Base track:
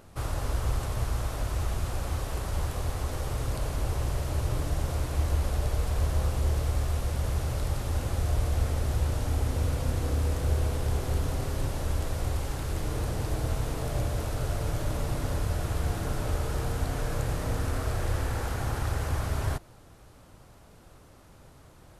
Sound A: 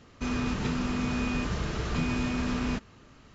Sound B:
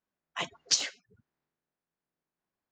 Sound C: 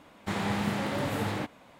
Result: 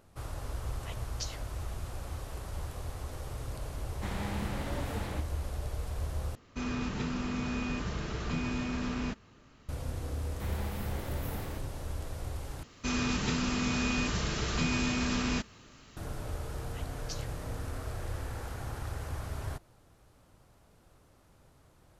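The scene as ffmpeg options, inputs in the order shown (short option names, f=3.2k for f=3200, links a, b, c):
-filter_complex "[2:a]asplit=2[a][b];[3:a]asplit=2[c][d];[1:a]asplit=2[e][f];[0:a]volume=-8.5dB[g];[d]aexciter=amount=7.2:drive=6.5:freq=11k[h];[f]highshelf=f=2.9k:g=10.5[i];[g]asplit=3[j][k][l];[j]atrim=end=6.354[m];[e]atrim=end=3.34,asetpts=PTS-STARTPTS,volume=-4.5dB[n];[k]atrim=start=9.686:end=12.634[o];[i]atrim=end=3.34,asetpts=PTS-STARTPTS,volume=-2dB[p];[l]atrim=start=15.966[q];[a]atrim=end=2.71,asetpts=PTS-STARTPTS,volume=-14dB,afade=t=in:d=0.004:c=hsin,afade=t=out:st=2.706:d=0.004:c=hsin,adelay=490[r];[c]atrim=end=1.79,asetpts=PTS-STARTPTS,volume=-8dB,afade=t=in:d=0.004:c=hsin,afade=t=out:st=1.786:d=0.004:c=hsin,adelay=3750[s];[h]atrim=end=1.79,asetpts=PTS-STARTPTS,volume=-12.5dB,afade=t=in:d=0.004:c=hsin,afade=t=out:st=1.786:d=0.004:c=hsin,adelay=10130[t];[b]atrim=end=2.71,asetpts=PTS-STARTPTS,volume=-17.5dB,afade=t=in:d=0.004:c=hsin,afade=t=out:st=2.706:d=0.004:c=hsin,adelay=16380[u];[m][n]acrossfade=d=0.004:c1=hsin:c2=hsin[v];[v][o]acrossfade=d=0.004:c1=hsin:c2=hsin[w];[w][p]acrossfade=d=0.004:c1=hsin:c2=hsin[x];[x][q]acrossfade=d=0.004:c1=hsin:c2=hsin[y];[y][r][s][t][u]amix=inputs=5:normalize=0"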